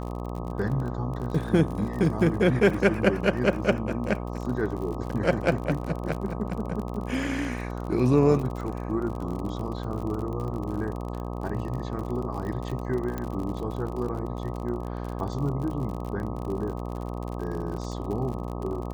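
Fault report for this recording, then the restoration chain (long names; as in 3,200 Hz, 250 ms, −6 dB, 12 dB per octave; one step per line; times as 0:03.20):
mains buzz 60 Hz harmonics 21 −33 dBFS
surface crackle 48 per second −33 dBFS
0:13.18: click −18 dBFS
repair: click removal
hum removal 60 Hz, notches 21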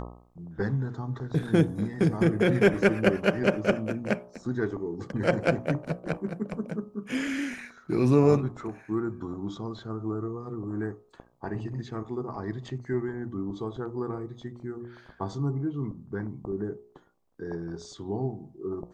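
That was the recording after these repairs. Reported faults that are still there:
0:13.18: click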